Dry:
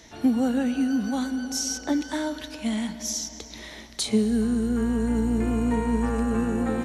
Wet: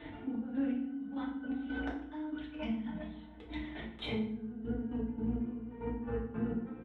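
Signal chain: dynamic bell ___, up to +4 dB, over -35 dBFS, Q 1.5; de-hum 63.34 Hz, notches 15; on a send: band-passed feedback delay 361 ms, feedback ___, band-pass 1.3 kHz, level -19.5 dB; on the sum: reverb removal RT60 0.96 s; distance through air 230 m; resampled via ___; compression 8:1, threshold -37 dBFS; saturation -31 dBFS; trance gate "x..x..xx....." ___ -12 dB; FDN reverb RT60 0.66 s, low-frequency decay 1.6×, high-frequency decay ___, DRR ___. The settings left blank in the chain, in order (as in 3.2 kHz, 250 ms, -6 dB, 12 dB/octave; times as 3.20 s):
170 Hz, 71%, 8 kHz, 168 bpm, 0.75×, -4.5 dB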